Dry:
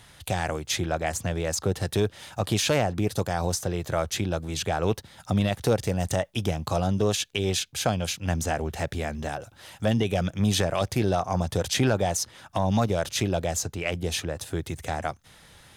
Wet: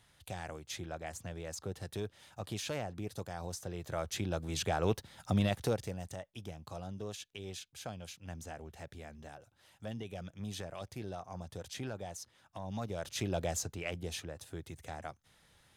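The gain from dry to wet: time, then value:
3.49 s -15 dB
4.52 s -6 dB
5.53 s -6 dB
6.13 s -18.5 dB
12.62 s -18.5 dB
13.44 s -7 dB
14.4 s -14 dB

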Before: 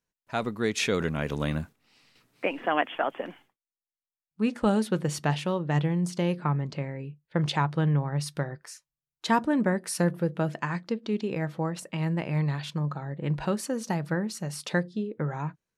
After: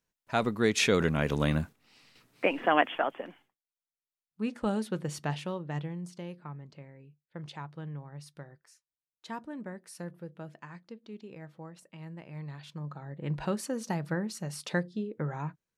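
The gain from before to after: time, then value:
2.87 s +1.5 dB
3.28 s -6.5 dB
5.43 s -6.5 dB
6.41 s -16 dB
12.27 s -16 dB
13.42 s -3.5 dB

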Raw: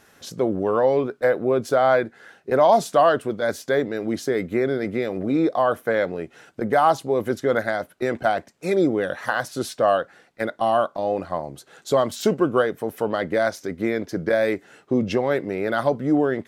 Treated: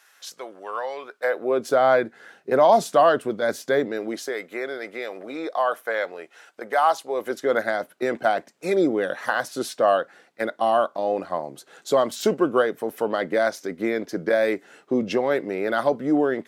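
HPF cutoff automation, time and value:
1.01 s 1100 Hz
1.39 s 490 Hz
1.81 s 160 Hz
3.79 s 160 Hz
4.36 s 650 Hz
7.02 s 650 Hz
7.68 s 220 Hz

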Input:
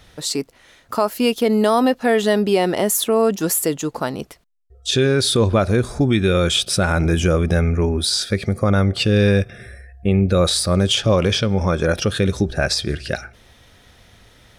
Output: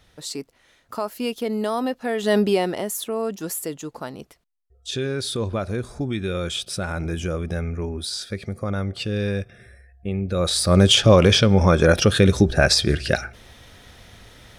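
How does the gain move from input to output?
2.18 s -8.5 dB
2.37 s +0.5 dB
2.88 s -9.5 dB
10.26 s -9.5 dB
10.8 s +3 dB

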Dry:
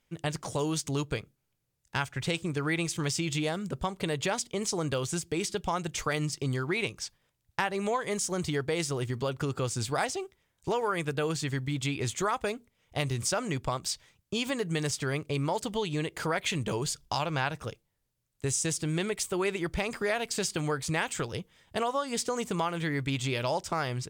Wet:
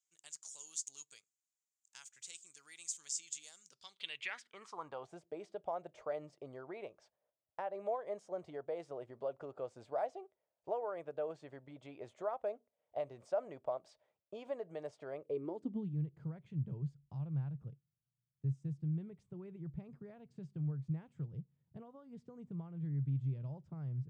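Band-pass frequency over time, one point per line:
band-pass, Q 5.2
3.59 s 7100 Hz
4.41 s 1700 Hz
5.17 s 620 Hz
15.16 s 620 Hz
16.05 s 140 Hz

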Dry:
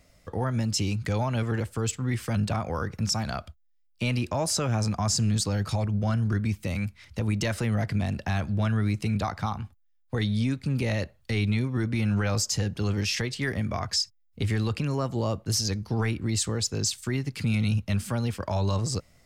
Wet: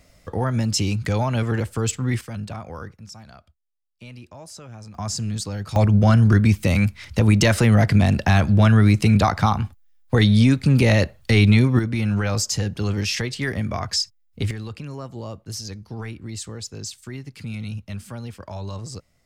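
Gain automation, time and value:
+5 dB
from 2.21 s -5 dB
from 2.93 s -14 dB
from 4.95 s -2 dB
from 5.76 s +11 dB
from 11.79 s +3.5 dB
from 14.51 s -6 dB

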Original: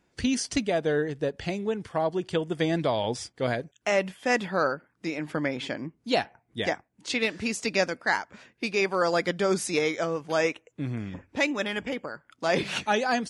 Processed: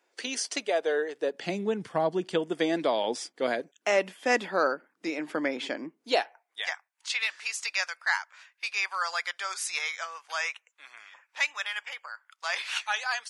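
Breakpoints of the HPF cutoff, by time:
HPF 24 dB/oct
1.16 s 400 Hz
1.71 s 120 Hz
2.68 s 250 Hz
5.95 s 250 Hz
6.71 s 1000 Hz

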